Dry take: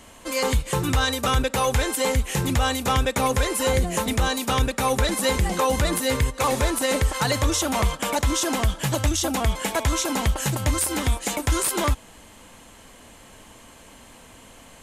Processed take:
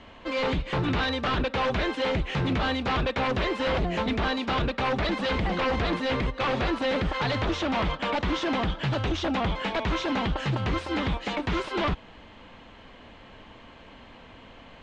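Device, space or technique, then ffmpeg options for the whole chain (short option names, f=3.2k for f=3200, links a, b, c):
synthesiser wavefolder: -af "aeval=exprs='0.1*(abs(mod(val(0)/0.1+3,4)-2)-1)':c=same,lowpass=f=3.8k:w=0.5412,lowpass=f=3.8k:w=1.3066"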